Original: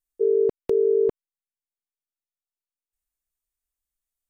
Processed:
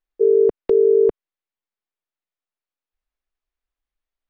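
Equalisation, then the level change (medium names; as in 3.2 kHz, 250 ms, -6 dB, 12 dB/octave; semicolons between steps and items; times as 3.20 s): distance through air 250 m; peaking EQ 110 Hz -11.5 dB 1.3 oct; +7.0 dB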